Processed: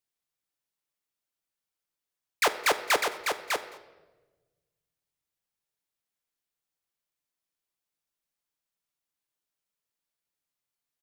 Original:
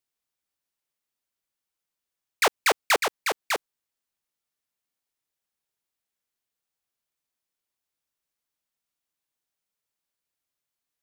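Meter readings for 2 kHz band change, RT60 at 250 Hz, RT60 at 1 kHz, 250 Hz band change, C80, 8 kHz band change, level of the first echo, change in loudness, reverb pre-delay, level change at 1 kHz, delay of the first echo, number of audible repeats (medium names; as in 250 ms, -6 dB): -2.5 dB, 1.8 s, 1.0 s, -2.5 dB, 14.0 dB, -2.5 dB, -23.0 dB, -2.5 dB, 6 ms, -2.5 dB, 215 ms, 1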